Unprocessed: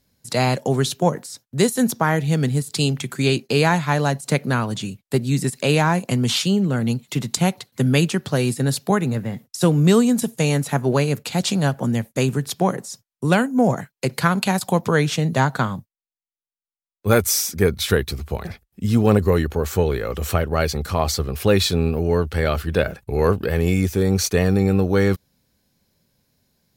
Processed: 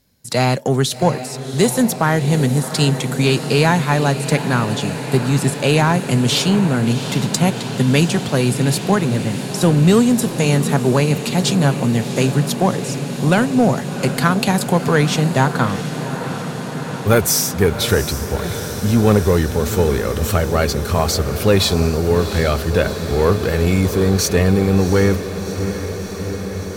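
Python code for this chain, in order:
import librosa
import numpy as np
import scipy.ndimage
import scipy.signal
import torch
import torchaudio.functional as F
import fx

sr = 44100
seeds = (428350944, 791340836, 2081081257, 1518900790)

p1 = 10.0 ** (-17.0 / 20.0) * np.tanh(x / 10.0 ** (-17.0 / 20.0))
p2 = x + F.gain(torch.from_numpy(p1), -4.0).numpy()
y = fx.echo_diffused(p2, sr, ms=730, feedback_pct=79, wet_db=-11)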